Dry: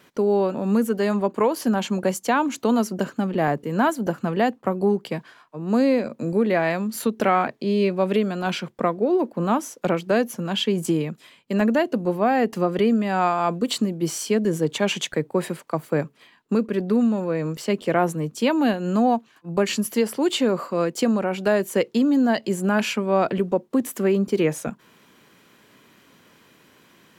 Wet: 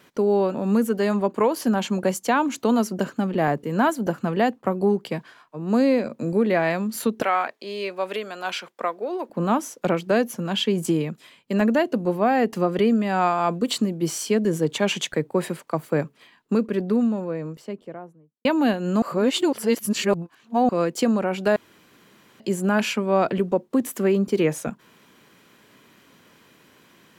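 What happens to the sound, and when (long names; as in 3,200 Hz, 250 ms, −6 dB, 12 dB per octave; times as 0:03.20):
0:07.22–0:09.30: Bessel high-pass filter 710 Hz
0:16.54–0:18.45: fade out and dull
0:19.02–0:20.69: reverse
0:21.56–0:22.40: fill with room tone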